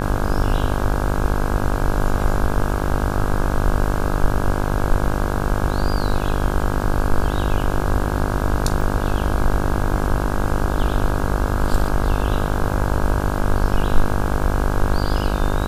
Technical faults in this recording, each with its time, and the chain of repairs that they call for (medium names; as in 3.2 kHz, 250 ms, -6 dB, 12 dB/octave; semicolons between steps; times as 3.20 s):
buzz 50 Hz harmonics 33 -23 dBFS
8.81 s: dropout 4 ms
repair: de-hum 50 Hz, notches 33; interpolate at 8.81 s, 4 ms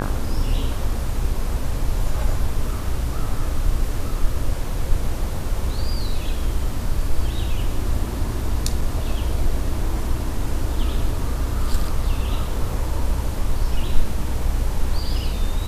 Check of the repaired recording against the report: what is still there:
nothing left